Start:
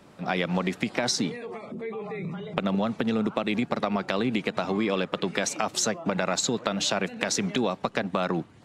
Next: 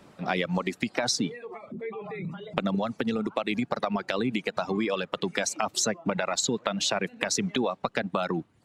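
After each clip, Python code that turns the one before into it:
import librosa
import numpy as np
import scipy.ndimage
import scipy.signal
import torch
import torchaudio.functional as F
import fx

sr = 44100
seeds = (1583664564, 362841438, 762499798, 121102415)

y = fx.dereverb_blind(x, sr, rt60_s=1.7)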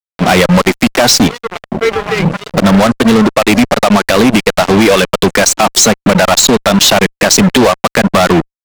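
y = fx.fuzz(x, sr, gain_db=34.0, gate_db=-37.0)
y = F.gain(torch.from_numpy(y), 9.0).numpy()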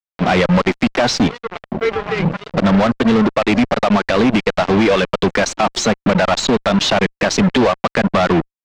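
y = fx.air_absorb(x, sr, metres=140.0)
y = F.gain(torch.from_numpy(y), -5.0).numpy()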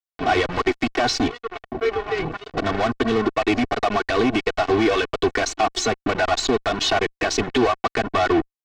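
y = x + 0.87 * np.pad(x, (int(2.7 * sr / 1000.0), 0))[:len(x)]
y = F.gain(torch.from_numpy(y), -7.0).numpy()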